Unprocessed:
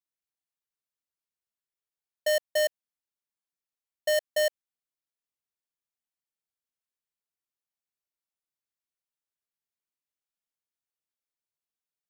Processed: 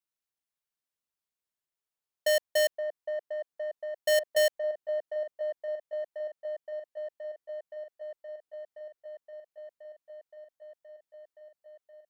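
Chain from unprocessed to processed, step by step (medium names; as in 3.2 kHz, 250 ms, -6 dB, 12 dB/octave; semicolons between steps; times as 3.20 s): on a send: feedback echo behind a band-pass 521 ms, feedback 83%, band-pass 670 Hz, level -7.5 dB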